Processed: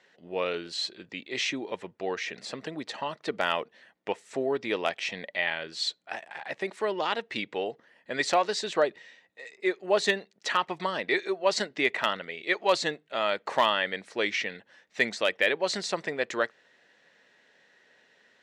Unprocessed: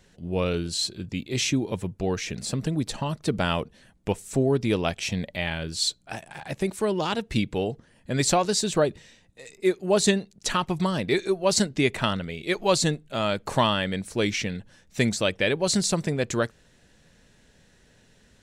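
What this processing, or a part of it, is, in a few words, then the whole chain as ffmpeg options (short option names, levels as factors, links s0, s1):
megaphone: -af "highpass=480,lowpass=3800,equalizer=f=1900:t=o:w=0.2:g=7.5,asoftclip=type=hard:threshold=0.251"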